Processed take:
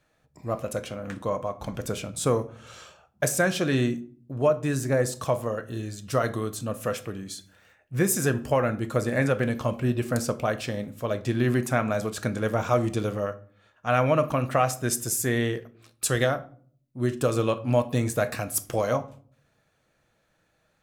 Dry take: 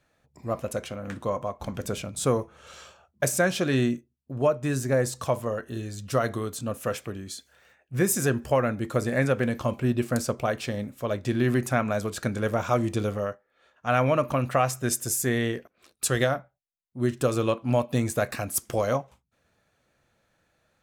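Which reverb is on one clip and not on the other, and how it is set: simulated room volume 510 m³, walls furnished, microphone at 0.55 m

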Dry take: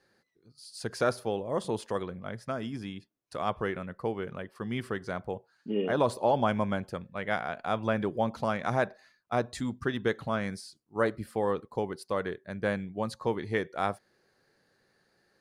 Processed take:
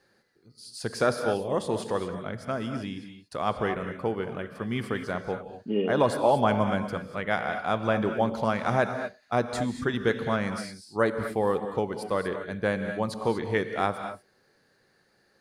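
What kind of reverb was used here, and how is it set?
gated-style reverb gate 260 ms rising, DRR 7 dB; trim +3 dB

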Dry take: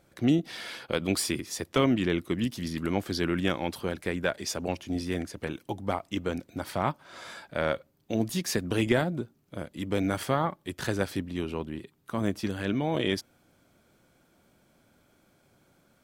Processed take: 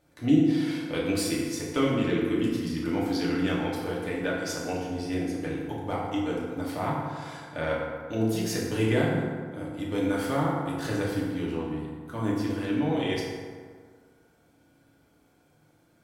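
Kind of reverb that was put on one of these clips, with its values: FDN reverb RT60 1.8 s, low-frequency decay 1×, high-frequency decay 0.5×, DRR -5.5 dB; trim -6.5 dB

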